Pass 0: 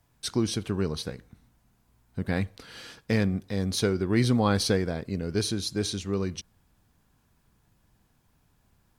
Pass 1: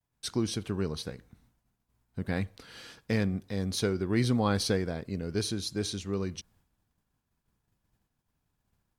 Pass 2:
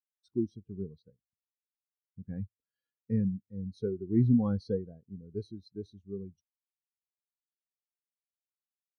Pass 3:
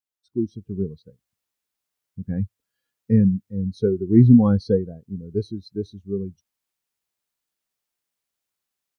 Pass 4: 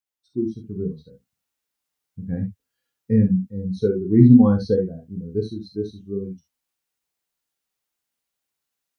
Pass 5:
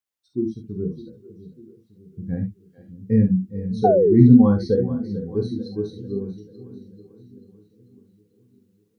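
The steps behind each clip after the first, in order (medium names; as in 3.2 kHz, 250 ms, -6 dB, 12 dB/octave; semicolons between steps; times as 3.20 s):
expander -58 dBFS; trim -3.5 dB
spectral contrast expander 2.5:1
level rider gain up to 11 dB; trim +1.5 dB
gated-style reverb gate 90 ms flat, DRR 2 dB; trim -1 dB
two-band feedback delay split 370 Hz, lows 602 ms, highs 441 ms, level -15 dB; painted sound fall, 3.84–4.15 s, 340–780 Hz -16 dBFS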